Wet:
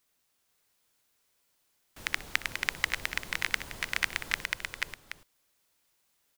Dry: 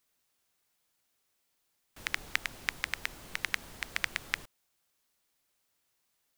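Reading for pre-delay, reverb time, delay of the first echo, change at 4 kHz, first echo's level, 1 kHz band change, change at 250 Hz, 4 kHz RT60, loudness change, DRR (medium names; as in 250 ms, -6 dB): no reverb, no reverb, 62 ms, +4.0 dB, -19.5 dB, +4.0 dB, +3.5 dB, no reverb, +3.5 dB, no reverb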